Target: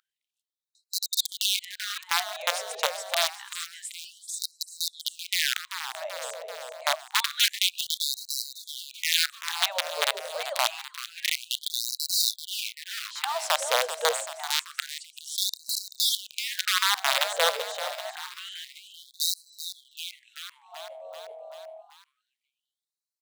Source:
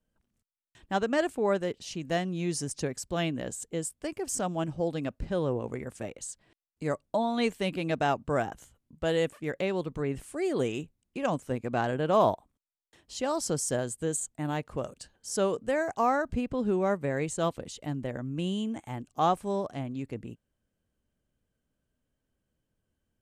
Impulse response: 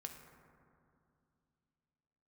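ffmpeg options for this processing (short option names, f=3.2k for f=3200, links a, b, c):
-filter_complex "[0:a]tiltshelf=f=970:g=5.5,aeval=exprs='(mod(7.08*val(0)+1,2)-1)/7.08':c=same,aeval=exprs='val(0)+0.00631*sin(2*PI*640*n/s)':c=same,equalizer=f=3.7k:w=2.5:g=7.5,asplit=2[a][b];[b]asplit=7[c][d][e][f][g][h][i];[c]adelay=386,afreqshift=38,volume=-11.5dB[j];[d]adelay=772,afreqshift=76,volume=-15.7dB[k];[e]adelay=1158,afreqshift=114,volume=-19.8dB[l];[f]adelay=1544,afreqshift=152,volume=-24dB[m];[g]adelay=1930,afreqshift=190,volume=-28.1dB[n];[h]adelay=2316,afreqshift=228,volume=-32.3dB[o];[i]adelay=2702,afreqshift=266,volume=-36.4dB[p];[j][k][l][m][n][o][p]amix=inputs=7:normalize=0[q];[a][q]amix=inputs=2:normalize=0,afftfilt=real='re*gte(b*sr/1024,430*pow(3900/430,0.5+0.5*sin(2*PI*0.27*pts/sr)))':imag='im*gte(b*sr/1024,430*pow(3900/430,0.5+0.5*sin(2*PI*0.27*pts/sr)))':win_size=1024:overlap=0.75,volume=3dB"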